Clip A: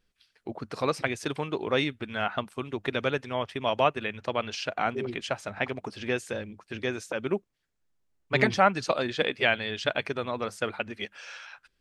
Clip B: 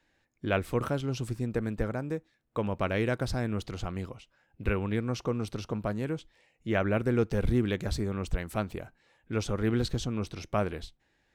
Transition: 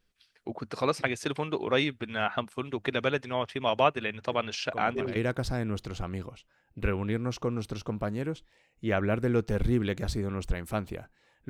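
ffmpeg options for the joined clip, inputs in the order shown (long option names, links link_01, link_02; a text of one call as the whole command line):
ffmpeg -i cue0.wav -i cue1.wav -filter_complex "[1:a]asplit=2[link_01][link_02];[0:a]apad=whole_dur=11.49,atrim=end=11.49,atrim=end=5.162[link_03];[link_02]atrim=start=2.988:end=9.32[link_04];[link_01]atrim=start=2.15:end=2.99,asetpts=PTS-STARTPTS,volume=-11dB,afade=type=in:duration=0.004:curve=hsin,afade=type=out:start_time=0.836:duration=0.004:curve=hsin,adelay=4320[link_05];[link_03][link_04]acrossfade=duration=0.004:curve1=hsin:curve2=hsin[link_06];[link_06][link_05]amix=inputs=2:normalize=0" out.wav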